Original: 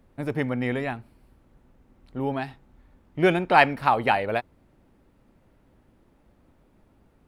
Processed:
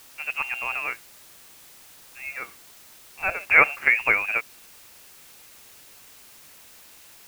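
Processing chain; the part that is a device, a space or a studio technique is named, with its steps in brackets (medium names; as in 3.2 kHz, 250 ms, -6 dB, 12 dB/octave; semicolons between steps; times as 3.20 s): 0.93–3.48 s: high-pass 1.1 kHz 6 dB/octave; scrambled radio voice (band-pass 370–3000 Hz; frequency inversion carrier 3 kHz; white noise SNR 21 dB); trim +1.5 dB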